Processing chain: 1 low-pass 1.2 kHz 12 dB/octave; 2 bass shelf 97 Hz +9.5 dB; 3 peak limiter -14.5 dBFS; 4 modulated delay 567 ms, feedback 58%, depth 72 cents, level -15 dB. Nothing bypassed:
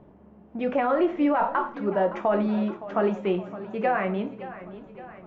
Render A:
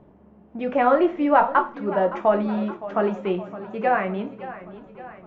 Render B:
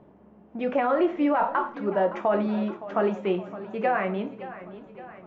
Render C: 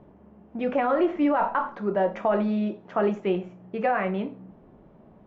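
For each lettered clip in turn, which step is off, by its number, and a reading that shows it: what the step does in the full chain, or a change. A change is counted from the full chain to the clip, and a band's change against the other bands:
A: 3, crest factor change +6.5 dB; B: 2, 125 Hz band -2.0 dB; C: 4, momentary loudness spread change -8 LU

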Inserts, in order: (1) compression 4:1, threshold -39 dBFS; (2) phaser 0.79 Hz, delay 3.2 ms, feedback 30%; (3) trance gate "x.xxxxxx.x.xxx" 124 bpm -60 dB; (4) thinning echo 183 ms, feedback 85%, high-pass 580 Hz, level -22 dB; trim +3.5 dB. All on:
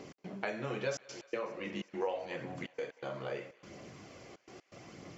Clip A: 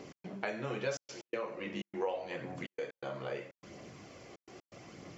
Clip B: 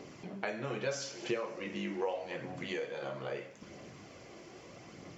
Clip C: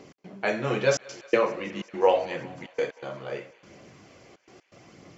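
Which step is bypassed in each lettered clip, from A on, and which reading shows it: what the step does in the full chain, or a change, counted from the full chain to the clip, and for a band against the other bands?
4, echo-to-direct -18.5 dB to none; 3, 4 kHz band +3.0 dB; 1, momentary loudness spread change -2 LU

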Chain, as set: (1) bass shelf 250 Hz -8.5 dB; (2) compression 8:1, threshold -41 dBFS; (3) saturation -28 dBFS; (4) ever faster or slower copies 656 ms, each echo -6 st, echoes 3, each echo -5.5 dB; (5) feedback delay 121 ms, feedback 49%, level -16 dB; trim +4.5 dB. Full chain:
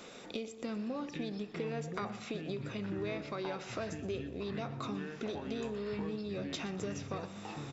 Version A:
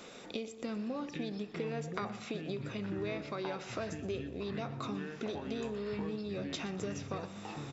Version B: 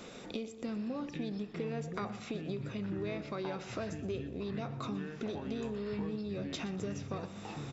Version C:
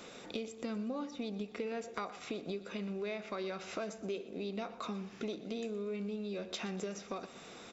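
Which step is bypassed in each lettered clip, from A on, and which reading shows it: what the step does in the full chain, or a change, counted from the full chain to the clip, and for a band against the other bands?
3, crest factor change +4.0 dB; 1, 125 Hz band +3.0 dB; 4, loudness change -1.0 LU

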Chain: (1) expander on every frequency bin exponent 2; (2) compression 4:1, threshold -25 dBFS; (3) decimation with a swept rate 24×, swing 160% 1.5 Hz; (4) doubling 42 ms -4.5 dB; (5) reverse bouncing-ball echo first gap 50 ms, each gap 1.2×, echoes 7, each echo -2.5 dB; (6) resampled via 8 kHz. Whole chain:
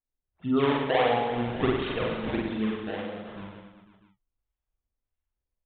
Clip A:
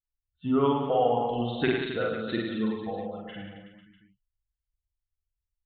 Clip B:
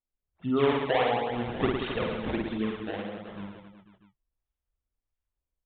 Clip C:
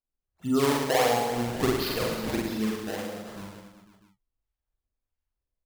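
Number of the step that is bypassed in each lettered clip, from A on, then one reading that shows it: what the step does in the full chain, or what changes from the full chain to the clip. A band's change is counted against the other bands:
3, 4 kHz band -2.5 dB; 4, loudness change -1.5 LU; 6, 4 kHz band +3.5 dB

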